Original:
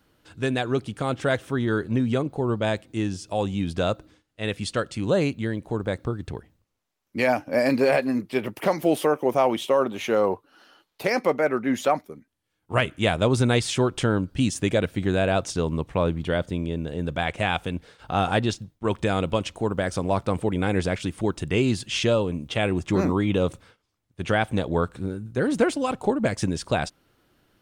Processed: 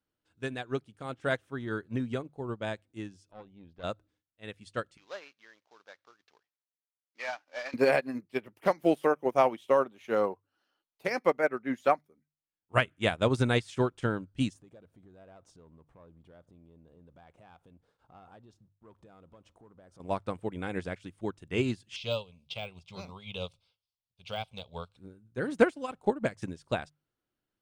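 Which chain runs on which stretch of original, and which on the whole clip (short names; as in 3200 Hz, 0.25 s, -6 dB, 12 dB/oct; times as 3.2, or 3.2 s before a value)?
3.31–3.84 tube stage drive 21 dB, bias 0.8 + air absorption 200 m
4.97–7.74 CVSD 32 kbps + HPF 910 Hz + sample leveller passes 1
14.53–20 resonant high shelf 1500 Hz -7 dB, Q 1.5 + compressor 2.5:1, threshold -36 dBFS + sample leveller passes 1
21.96–24.97 de-esser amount 90% + band shelf 3200 Hz +15 dB + fixed phaser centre 760 Hz, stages 4
whole clip: notches 50/100/150 Hz; dynamic EQ 1600 Hz, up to +3 dB, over -39 dBFS, Q 1.2; upward expander 2.5:1, over -31 dBFS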